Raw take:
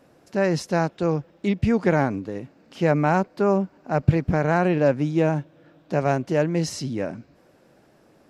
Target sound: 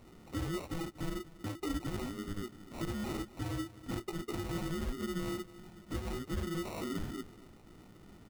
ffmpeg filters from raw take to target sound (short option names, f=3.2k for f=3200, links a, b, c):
-filter_complex "[0:a]afftfilt=real='real(if(lt(b,272),68*(eq(floor(b/68),0)*1+eq(floor(b/68),1)*2+eq(floor(b/68),2)*3+eq(floor(b/68),3)*0)+mod(b,68),b),0)':imag='imag(if(lt(b,272),68*(eq(floor(b/68),0)*1+eq(floor(b/68),1)*2+eq(floor(b/68),2)*3+eq(floor(b/68),3)*0)+mod(b,68),b),0)':win_size=2048:overlap=0.75,highshelf=f=4.3k:g=-3.5,acompressor=threshold=-37dB:ratio=3,aresample=16000,asoftclip=type=tanh:threshold=-34.5dB,aresample=44100,flanger=delay=17.5:depth=2.1:speed=0.66,acrusher=samples=27:mix=1:aa=0.000001,asplit=2[a][b];[b]aecho=0:1:240:0.133[c];[a][c]amix=inputs=2:normalize=0,volume=6dB"